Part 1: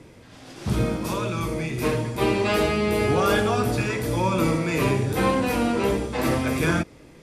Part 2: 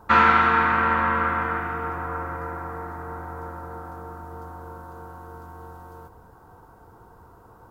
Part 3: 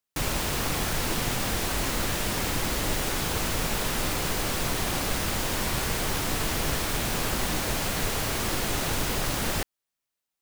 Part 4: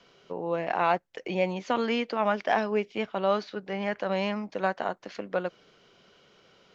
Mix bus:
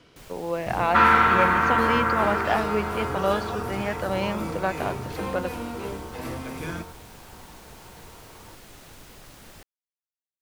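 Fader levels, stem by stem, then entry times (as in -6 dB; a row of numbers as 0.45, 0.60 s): -11.5, -0.5, -19.5, +1.0 dB; 0.00, 0.85, 0.00, 0.00 s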